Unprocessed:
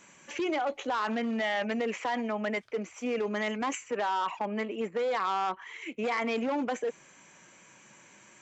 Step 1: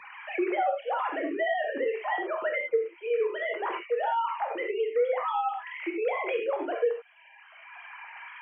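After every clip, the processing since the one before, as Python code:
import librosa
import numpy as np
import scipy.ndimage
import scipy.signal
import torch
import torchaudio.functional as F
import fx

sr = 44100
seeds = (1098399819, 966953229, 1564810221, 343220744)

y = fx.sine_speech(x, sr)
y = fx.rev_gated(y, sr, seeds[0], gate_ms=120, shape='flat', drr_db=1.0)
y = fx.band_squash(y, sr, depth_pct=70)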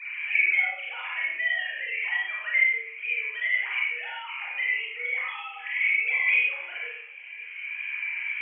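y = fx.highpass_res(x, sr, hz=2300.0, q=7.5)
y = fx.echo_feedback(y, sr, ms=542, feedback_pct=50, wet_db=-23)
y = fx.rev_schroeder(y, sr, rt60_s=0.54, comb_ms=31, drr_db=-3.0)
y = F.gain(torch.from_numpy(y), -3.5).numpy()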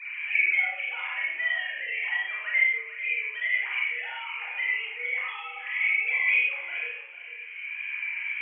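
y = x + 10.0 ** (-12.0 / 20.0) * np.pad(x, (int(447 * sr / 1000.0), 0))[:len(x)]
y = F.gain(torch.from_numpy(y), -1.0).numpy()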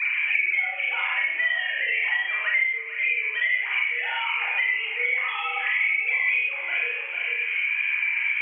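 y = fx.band_squash(x, sr, depth_pct=100)
y = F.gain(torch.from_numpy(y), 3.0).numpy()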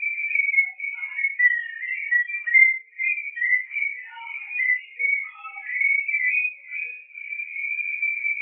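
y = fx.spectral_expand(x, sr, expansion=2.5)
y = F.gain(torch.from_numpy(y), 5.0).numpy()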